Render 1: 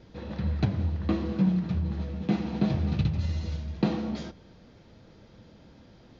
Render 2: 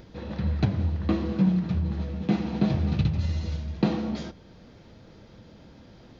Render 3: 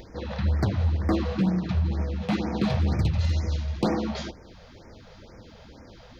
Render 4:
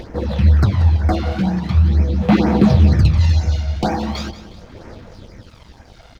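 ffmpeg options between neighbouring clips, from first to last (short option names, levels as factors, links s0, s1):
-af "acompressor=mode=upward:threshold=0.00447:ratio=2.5,volume=1.26"
-af "equalizer=f=160:t=o:w=1.3:g=-8.5,volume=15,asoftclip=hard,volume=0.0668,afftfilt=real='re*(1-between(b*sr/1024,270*pow(3600/270,0.5+0.5*sin(2*PI*2.1*pts/sr))/1.41,270*pow(3600/270,0.5+0.5*sin(2*PI*2.1*pts/sr))*1.41))':imag='im*(1-between(b*sr/1024,270*pow(3600/270,0.5+0.5*sin(2*PI*2.1*pts/sr))/1.41,270*pow(3600/270,0.5+0.5*sin(2*PI*2.1*pts/sr))*1.41))':win_size=1024:overlap=0.75,volume=2"
-af "aphaser=in_gain=1:out_gain=1:delay=1.4:decay=0.58:speed=0.41:type=sinusoidal,aeval=exprs='sgn(val(0))*max(abs(val(0))-0.00316,0)':c=same,aecho=1:1:182|364|546|728:0.2|0.0738|0.0273|0.0101,volume=2"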